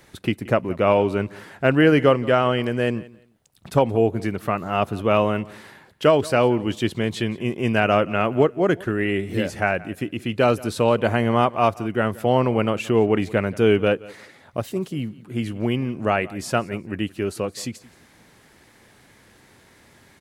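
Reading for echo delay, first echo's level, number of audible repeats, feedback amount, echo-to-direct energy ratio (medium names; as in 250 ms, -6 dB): 175 ms, -21.0 dB, 2, 21%, -21.0 dB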